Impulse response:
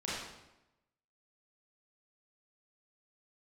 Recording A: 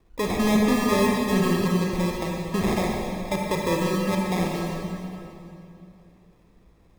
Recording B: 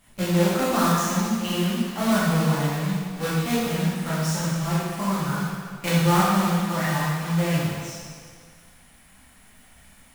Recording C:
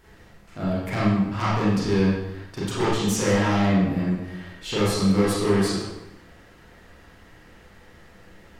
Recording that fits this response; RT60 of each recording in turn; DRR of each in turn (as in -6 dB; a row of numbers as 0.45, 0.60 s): C; 2.8, 1.9, 0.95 s; -1.5, -9.0, -8.5 dB